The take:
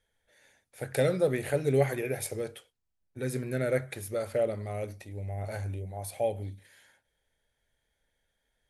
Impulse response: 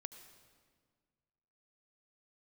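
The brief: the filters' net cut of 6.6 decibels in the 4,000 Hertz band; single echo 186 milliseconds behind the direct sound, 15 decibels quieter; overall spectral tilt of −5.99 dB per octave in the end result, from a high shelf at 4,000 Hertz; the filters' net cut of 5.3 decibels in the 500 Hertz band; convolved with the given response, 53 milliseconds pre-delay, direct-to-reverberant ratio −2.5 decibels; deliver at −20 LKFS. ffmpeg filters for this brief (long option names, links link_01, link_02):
-filter_complex "[0:a]equalizer=frequency=500:width_type=o:gain=-6,highshelf=frequency=4000:gain=-6,equalizer=frequency=4000:width_type=o:gain=-4.5,aecho=1:1:186:0.178,asplit=2[link_01][link_02];[1:a]atrim=start_sample=2205,adelay=53[link_03];[link_02][link_03]afir=irnorm=-1:irlink=0,volume=7dB[link_04];[link_01][link_04]amix=inputs=2:normalize=0,volume=10.5dB"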